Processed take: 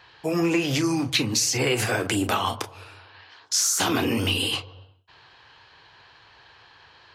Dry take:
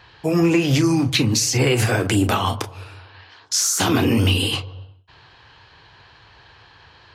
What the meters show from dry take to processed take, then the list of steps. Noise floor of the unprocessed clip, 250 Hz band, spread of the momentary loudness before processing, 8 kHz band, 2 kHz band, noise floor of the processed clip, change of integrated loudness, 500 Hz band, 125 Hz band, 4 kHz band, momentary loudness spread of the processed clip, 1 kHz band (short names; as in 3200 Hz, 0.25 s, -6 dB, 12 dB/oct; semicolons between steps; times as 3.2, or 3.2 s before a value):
-50 dBFS, -6.0 dB, 7 LU, -2.5 dB, -2.5 dB, -54 dBFS, -4.5 dB, -4.5 dB, -10.0 dB, -2.5 dB, 7 LU, -3.0 dB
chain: low shelf 220 Hz -10 dB; gain -2.5 dB